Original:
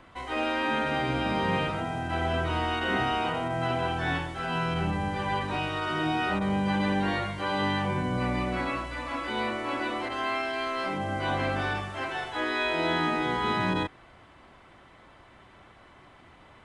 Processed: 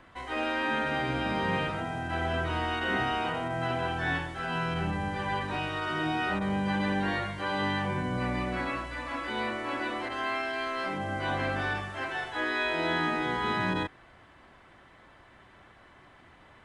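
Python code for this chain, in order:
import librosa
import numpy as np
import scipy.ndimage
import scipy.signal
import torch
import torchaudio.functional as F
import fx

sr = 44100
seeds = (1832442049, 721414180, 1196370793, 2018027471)

y = fx.peak_eq(x, sr, hz=1700.0, db=5.5, octaves=0.27)
y = F.gain(torch.from_numpy(y), -2.5).numpy()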